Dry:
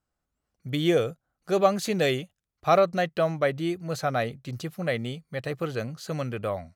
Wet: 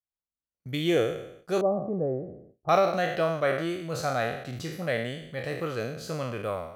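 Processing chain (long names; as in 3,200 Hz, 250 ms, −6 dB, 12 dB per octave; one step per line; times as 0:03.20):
peak hold with a decay on every bin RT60 0.79 s
noise gate with hold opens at −36 dBFS
0:01.61–0:02.69: Bessel low-pass filter 560 Hz, order 6
level −3.5 dB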